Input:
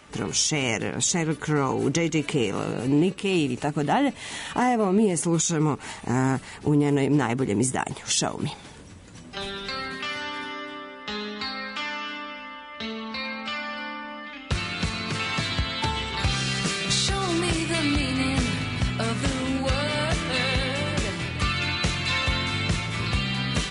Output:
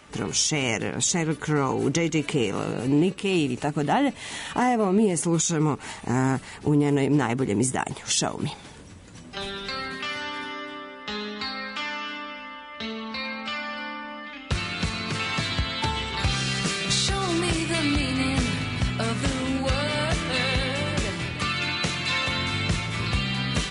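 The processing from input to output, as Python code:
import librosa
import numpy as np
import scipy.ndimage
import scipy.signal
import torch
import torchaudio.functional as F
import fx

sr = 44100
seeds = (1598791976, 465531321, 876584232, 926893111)

y = fx.highpass(x, sr, hz=130.0, slope=12, at=(21.34, 22.38))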